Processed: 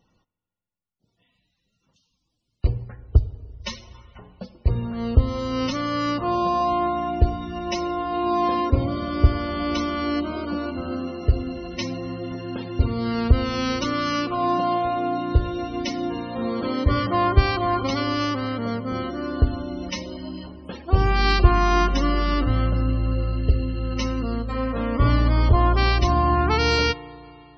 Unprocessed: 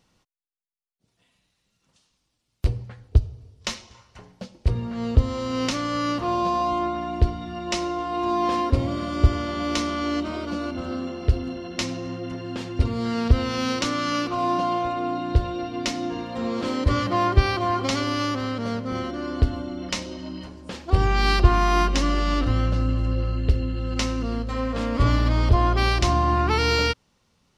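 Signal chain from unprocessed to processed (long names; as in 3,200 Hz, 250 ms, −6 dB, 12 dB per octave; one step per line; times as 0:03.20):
spring reverb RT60 3.1 s, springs 34/49 ms, chirp 30 ms, DRR 17.5 dB
spectral peaks only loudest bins 64
level +1 dB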